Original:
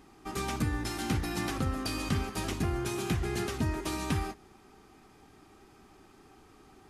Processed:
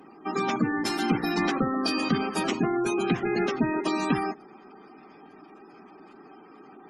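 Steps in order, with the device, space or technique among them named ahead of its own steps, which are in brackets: HPF 69 Hz 24 dB/oct; noise-suppressed video call (HPF 180 Hz 24 dB/oct; spectral gate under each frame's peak -20 dB strong; gain +9 dB; Opus 24 kbps 48000 Hz)

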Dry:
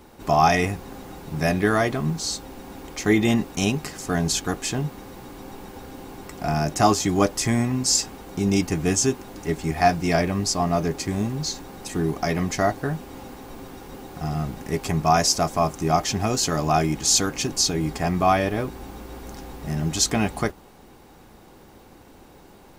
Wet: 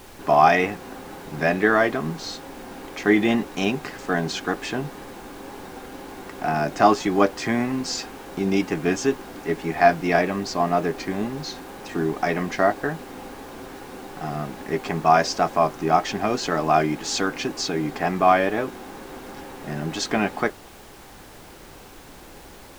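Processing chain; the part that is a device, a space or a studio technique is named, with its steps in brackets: horn gramophone (BPF 240–3200 Hz; bell 1600 Hz +4 dB 0.27 oct; wow and flutter; pink noise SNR 22 dB); gain +2.5 dB

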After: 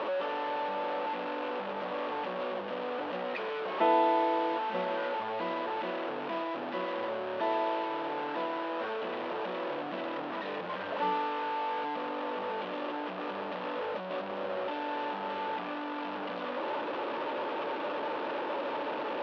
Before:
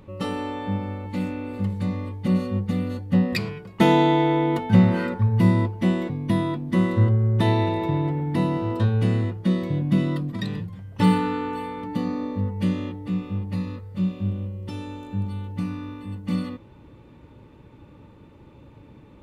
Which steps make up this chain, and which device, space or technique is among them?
digital answering machine (BPF 380–3100 Hz; delta modulation 32 kbps, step -22 dBFS; speaker cabinet 370–3000 Hz, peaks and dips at 590 Hz +6 dB, 920 Hz +3 dB, 2100 Hz -7 dB); gain -6 dB

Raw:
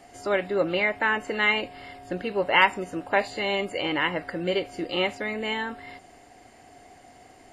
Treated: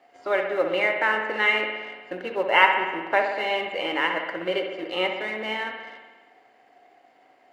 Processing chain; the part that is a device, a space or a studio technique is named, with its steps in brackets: phone line with mismatched companding (BPF 350–3600 Hz; G.711 law mismatch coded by A); HPF 51 Hz; high shelf 8300 Hz -9 dB; notches 50/100/150/200/250/300/350/400/450 Hz; spring tank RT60 1.3 s, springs 60 ms, chirp 30 ms, DRR 4 dB; gain +2 dB

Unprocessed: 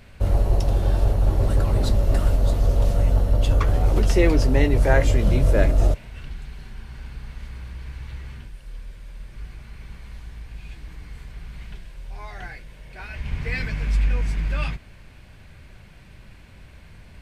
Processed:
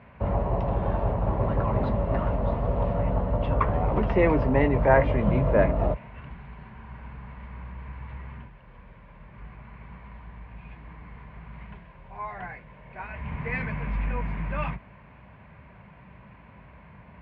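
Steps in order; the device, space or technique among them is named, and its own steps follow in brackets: bass cabinet (speaker cabinet 61–2300 Hz, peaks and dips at 86 Hz -10 dB, 190 Hz +4 dB, 340 Hz -5 dB, 640 Hz +3 dB, 1000 Hz +10 dB, 1500 Hz -3 dB)

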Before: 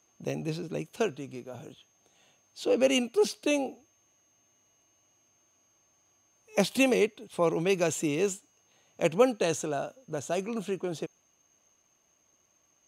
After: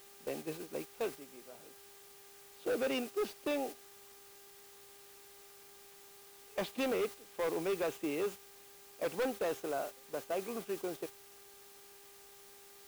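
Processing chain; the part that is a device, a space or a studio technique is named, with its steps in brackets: aircraft radio (BPF 310–2400 Hz; hard clip -26 dBFS, distortion -8 dB; buzz 400 Hz, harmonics 33, -52 dBFS -7 dB/oct; white noise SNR 11 dB; gate -38 dBFS, range -7 dB); gain -4 dB

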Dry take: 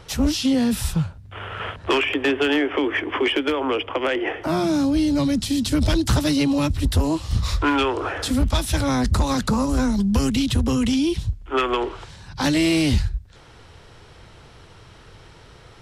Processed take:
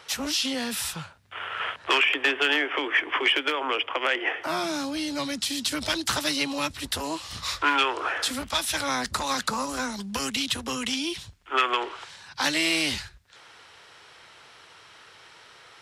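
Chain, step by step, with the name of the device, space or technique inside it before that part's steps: filter by subtraction (in parallel: LPF 1700 Hz 12 dB/oct + phase invert)

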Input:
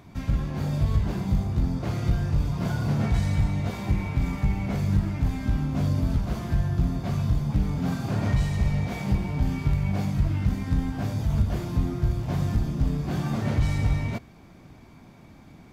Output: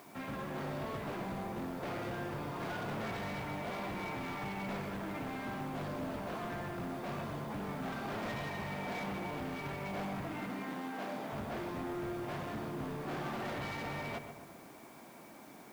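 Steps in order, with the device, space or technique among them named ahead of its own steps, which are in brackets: aircraft radio (BPF 380–2400 Hz; hard clip -39 dBFS, distortion -8 dB; white noise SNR 22 dB); 10.29–11.33 HPF 180 Hz 24 dB/oct; darkening echo 0.128 s, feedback 59%, low-pass 2000 Hz, level -7.5 dB; gain +1.5 dB

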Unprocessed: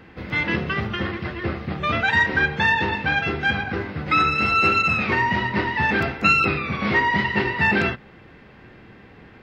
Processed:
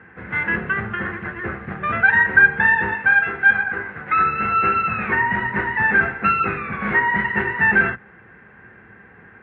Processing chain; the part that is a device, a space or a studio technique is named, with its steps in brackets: sub-octave bass pedal (octaver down 2 oct, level -4 dB; speaker cabinet 77–2200 Hz, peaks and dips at 83 Hz -6 dB, 140 Hz -6 dB, 290 Hz -9 dB, 590 Hz -5 dB, 1600 Hz +10 dB); 2.94–4.19 low shelf 330 Hz -8.5 dB

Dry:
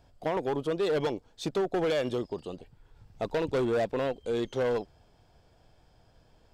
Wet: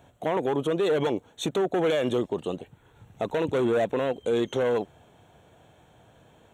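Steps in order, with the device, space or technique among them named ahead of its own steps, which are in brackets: PA system with an anti-feedback notch (HPF 110 Hz 12 dB/oct; Butterworth band-stop 4900 Hz, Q 2.4; limiter -25.5 dBFS, peak gain reduction 7 dB); gain +8.5 dB

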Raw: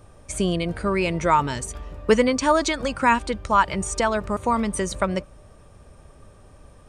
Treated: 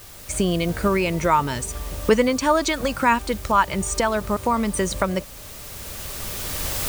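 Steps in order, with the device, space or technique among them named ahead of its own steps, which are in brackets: cheap recorder with automatic gain (white noise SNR 21 dB; recorder AGC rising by 10 dB/s)

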